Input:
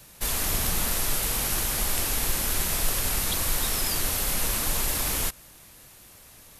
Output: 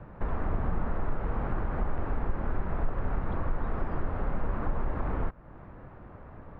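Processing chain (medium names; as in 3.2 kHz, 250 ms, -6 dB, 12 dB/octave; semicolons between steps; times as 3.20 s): low-pass 1.4 kHz 24 dB/octave; bass shelf 390 Hz +3.5 dB; compression 2:1, threshold -40 dBFS, peak gain reduction 12.5 dB; trim +7.5 dB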